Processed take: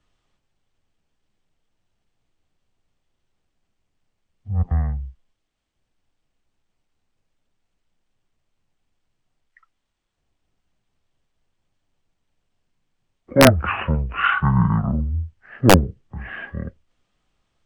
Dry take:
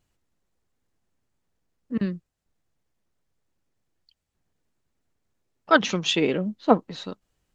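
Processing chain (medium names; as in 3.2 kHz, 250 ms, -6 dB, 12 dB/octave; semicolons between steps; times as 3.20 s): frequency shift -21 Hz; speed mistake 78 rpm record played at 33 rpm; integer overflow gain 5.5 dB; trim +4.5 dB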